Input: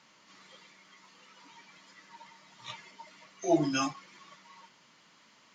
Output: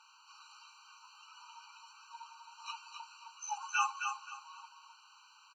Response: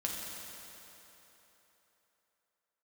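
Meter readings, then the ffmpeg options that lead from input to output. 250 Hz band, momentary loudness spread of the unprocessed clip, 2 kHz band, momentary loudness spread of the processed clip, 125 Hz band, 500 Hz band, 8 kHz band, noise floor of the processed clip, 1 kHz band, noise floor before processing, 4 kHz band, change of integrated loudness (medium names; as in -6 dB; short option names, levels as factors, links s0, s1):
under -40 dB, 22 LU, +2.5 dB, 23 LU, under -40 dB, under -40 dB, no reading, -62 dBFS, +1.5 dB, -62 dBFS, -4.0 dB, -8.0 dB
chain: -af "aecho=1:1:264|528|792:0.501|0.125|0.0313,afftfilt=real='re*eq(mod(floor(b*sr/1024/780),2),1)':imag='im*eq(mod(floor(b*sr/1024/780),2),1)':win_size=1024:overlap=0.75,volume=1.33"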